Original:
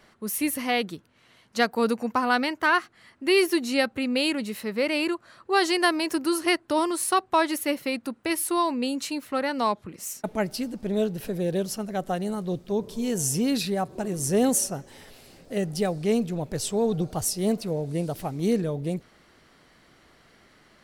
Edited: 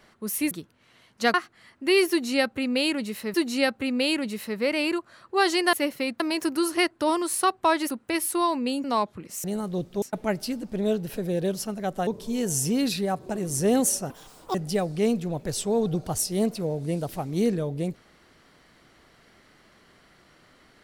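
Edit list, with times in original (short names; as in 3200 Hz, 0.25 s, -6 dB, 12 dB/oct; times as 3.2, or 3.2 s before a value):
0.51–0.86 cut
1.69–2.74 cut
3.5–4.74 loop, 2 plays
7.59–8.06 move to 5.89
9–9.53 cut
12.18–12.76 move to 10.13
14.79–15.61 speed 184%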